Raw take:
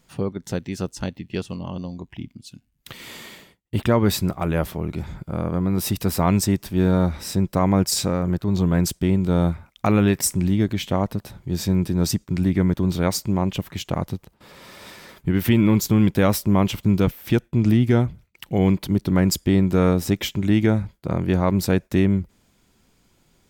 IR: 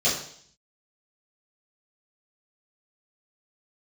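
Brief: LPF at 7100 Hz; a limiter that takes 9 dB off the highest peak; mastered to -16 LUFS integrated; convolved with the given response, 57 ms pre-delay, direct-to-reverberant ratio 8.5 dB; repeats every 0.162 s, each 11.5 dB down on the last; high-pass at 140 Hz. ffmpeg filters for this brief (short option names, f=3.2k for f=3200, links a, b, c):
-filter_complex "[0:a]highpass=140,lowpass=7.1k,alimiter=limit=-13.5dB:level=0:latency=1,aecho=1:1:162|324|486:0.266|0.0718|0.0194,asplit=2[a][b];[1:a]atrim=start_sample=2205,adelay=57[c];[b][c]afir=irnorm=-1:irlink=0,volume=-22dB[d];[a][d]amix=inputs=2:normalize=0,volume=9dB"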